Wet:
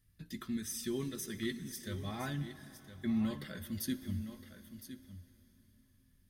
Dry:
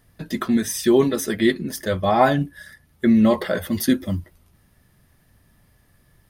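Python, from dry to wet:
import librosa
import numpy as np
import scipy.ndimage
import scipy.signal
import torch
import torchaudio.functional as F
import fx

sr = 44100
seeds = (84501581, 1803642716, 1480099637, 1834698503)

p1 = fx.tone_stack(x, sr, knobs='6-0-2')
p2 = p1 + fx.echo_single(p1, sr, ms=1012, db=-12.0, dry=0)
p3 = fx.rev_plate(p2, sr, seeds[0], rt60_s=4.4, hf_ratio=1.0, predelay_ms=0, drr_db=13.5)
y = F.gain(torch.from_numpy(p3), 1.0).numpy()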